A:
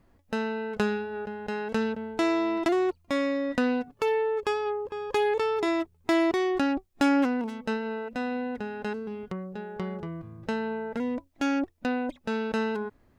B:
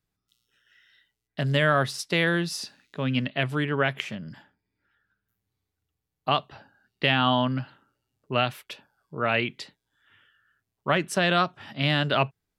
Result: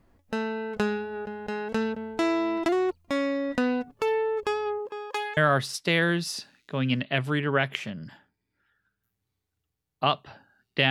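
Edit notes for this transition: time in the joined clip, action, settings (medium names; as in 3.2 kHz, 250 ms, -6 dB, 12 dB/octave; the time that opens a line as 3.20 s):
A
4.78–5.37 s: high-pass 200 Hz -> 1.4 kHz
5.37 s: go over to B from 1.62 s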